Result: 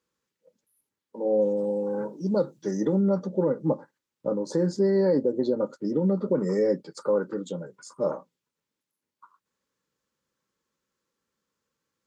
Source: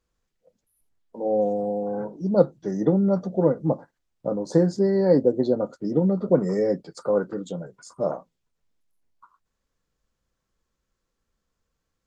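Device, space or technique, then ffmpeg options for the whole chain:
PA system with an anti-feedback notch: -filter_complex "[0:a]asettb=1/sr,asplit=3[link_01][link_02][link_03];[link_01]atrim=end=1.574[link_04];[link_02]atrim=start=1.57:end=2.96,asetpts=PTS-STARTPTS,afade=type=in:duration=0.004:curve=qsin,afade=type=out:start_time=1.386:duration=0.004:curve=qsin,highshelf=frequency=3600:gain=9.5[link_05];[link_03]atrim=start=2.956[link_06];[link_04][link_05]acrossfade=duration=0.004:curve1=hsin:curve2=qsin[link_07];[link_07][link_06]acrossfade=duration=0.004:curve1=qsin:curve2=hsin,highpass=170,asuperstop=centerf=700:order=4:qfactor=4.4,alimiter=limit=-14.5dB:level=0:latency=1:release=73"

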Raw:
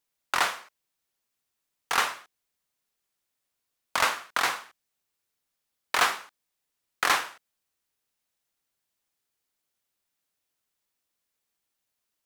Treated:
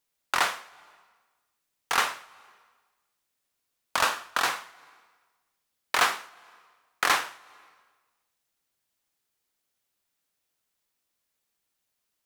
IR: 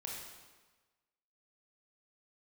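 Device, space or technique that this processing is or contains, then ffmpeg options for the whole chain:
compressed reverb return: -filter_complex "[0:a]asplit=2[link_01][link_02];[1:a]atrim=start_sample=2205[link_03];[link_02][link_03]afir=irnorm=-1:irlink=0,acompressor=threshold=-39dB:ratio=12,volume=-8.5dB[link_04];[link_01][link_04]amix=inputs=2:normalize=0,asettb=1/sr,asplit=3[link_05][link_06][link_07];[link_05]atrim=end=3.974[link_08];[link_06]atrim=start=3.97:end=4.48,asetpts=PTS-STARTPTS,afade=type=in:duration=0.004:curve=qsin,afade=type=out:start_time=0.506:duration=0.004:curve=qsin,bandreject=frequency=2100:width=7.8[link_09];[link_07]atrim=start=4.476[link_10];[link_08][link_09]acrossfade=duration=0.004:curve1=hsin:curve2=qsin[link_11];[link_11][link_10]acrossfade=duration=0.004:curve1=qsin:curve2=hsin"

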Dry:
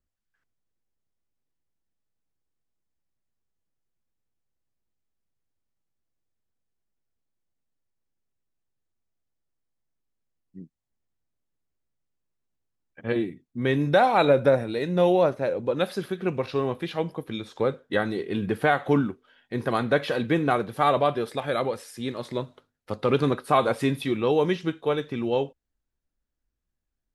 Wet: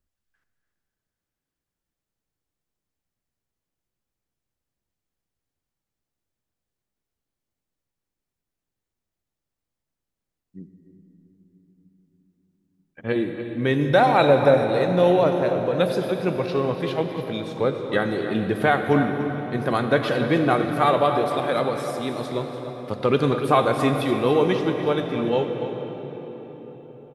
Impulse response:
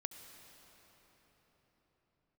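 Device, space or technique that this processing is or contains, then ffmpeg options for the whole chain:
cave: -filter_complex "[0:a]aecho=1:1:289:0.251[link_01];[1:a]atrim=start_sample=2205[link_02];[link_01][link_02]afir=irnorm=-1:irlink=0,volume=5.5dB"

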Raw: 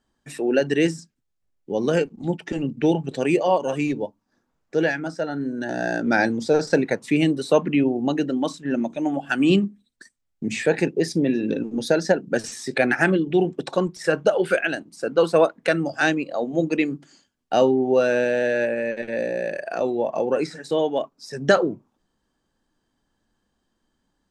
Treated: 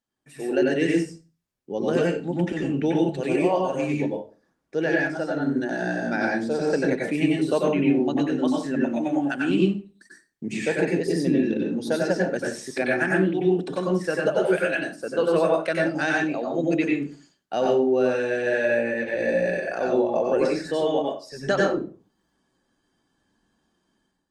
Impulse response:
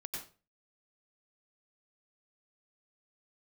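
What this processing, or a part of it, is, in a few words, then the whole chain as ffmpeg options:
far-field microphone of a smart speaker: -filter_complex "[1:a]atrim=start_sample=2205[link_01];[0:a][link_01]afir=irnorm=-1:irlink=0,highpass=frequency=98:poles=1,dynaudnorm=framelen=100:gausssize=7:maxgain=13dB,volume=-8.5dB" -ar 48000 -c:a libopus -b:a 32k

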